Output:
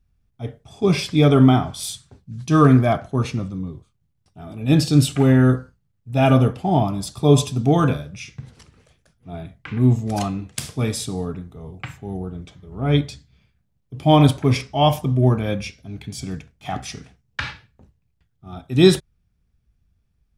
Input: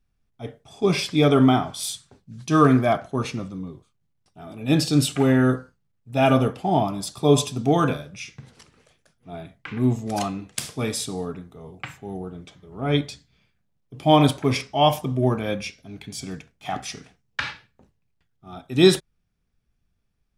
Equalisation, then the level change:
parametric band 66 Hz +11.5 dB 2.5 octaves
0.0 dB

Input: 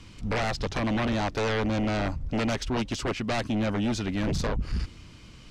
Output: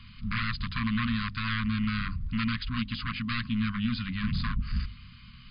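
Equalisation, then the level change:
linear-phase brick-wall band-stop 260–1,000 Hz
linear-phase brick-wall low-pass 5,000 Hz
mains-hum notches 50/100/150/200/250 Hz
0.0 dB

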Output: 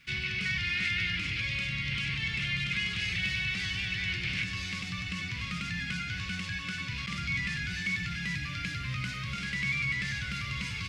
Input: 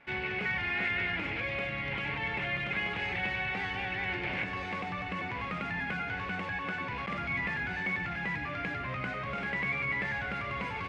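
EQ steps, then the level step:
drawn EQ curve 150 Hz 0 dB, 360 Hz −17 dB, 840 Hz −29 dB, 1,200 Hz −11 dB, 1,800 Hz −8 dB, 5,100 Hz +12 dB
+5.5 dB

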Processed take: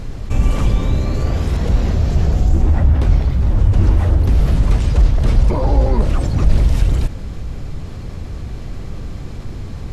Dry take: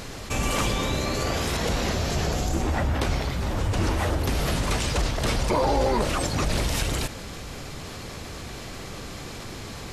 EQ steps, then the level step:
spectral tilt −2 dB per octave
low-shelf EQ 200 Hz +9.5 dB
−2.5 dB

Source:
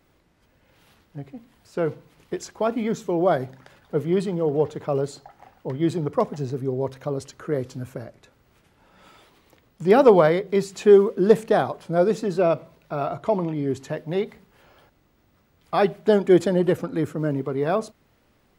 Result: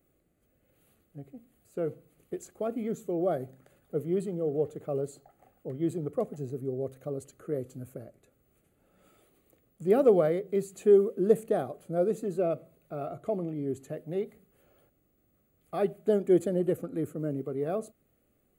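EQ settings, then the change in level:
low-shelf EQ 370 Hz −10 dB
flat-topped bell 2,400 Hz −14.5 dB
phaser with its sweep stopped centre 2,300 Hz, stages 4
0.0 dB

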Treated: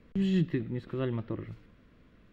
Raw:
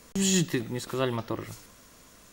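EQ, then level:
high-frequency loss of the air 460 metres
parametric band 860 Hz −12.5 dB 1.5 octaves
high-shelf EQ 3,800 Hz −7 dB
+1.0 dB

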